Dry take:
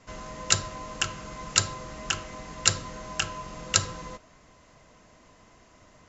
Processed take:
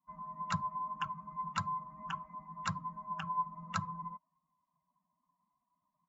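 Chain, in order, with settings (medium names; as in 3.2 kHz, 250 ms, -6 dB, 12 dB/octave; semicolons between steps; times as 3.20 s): expander on every frequency bin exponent 2; two resonant band-passes 420 Hz, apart 2.6 oct; trim +8.5 dB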